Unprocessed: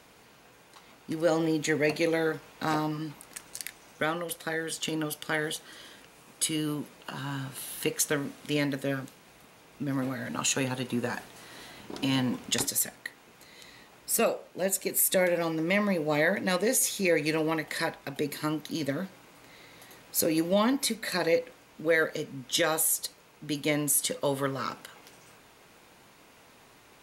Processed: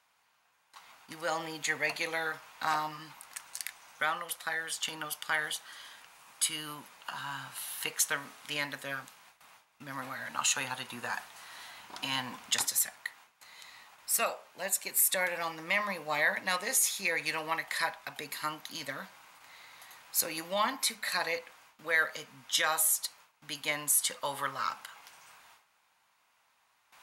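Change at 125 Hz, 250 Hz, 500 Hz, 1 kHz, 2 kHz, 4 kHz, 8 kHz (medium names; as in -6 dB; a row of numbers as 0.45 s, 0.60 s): -15.5 dB, -17.0 dB, -11.0 dB, +0.5 dB, +0.5 dB, -0.5 dB, -1.0 dB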